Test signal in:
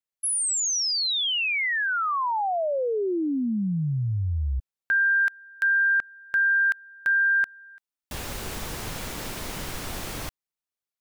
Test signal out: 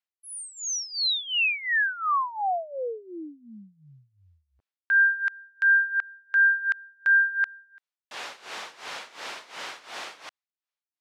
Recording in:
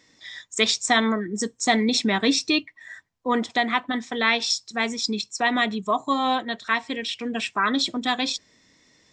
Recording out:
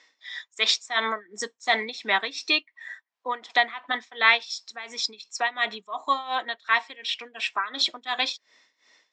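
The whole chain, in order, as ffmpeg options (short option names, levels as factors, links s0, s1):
-af "tremolo=f=2.8:d=0.87,highpass=720,lowpass=4600,volume=1.58"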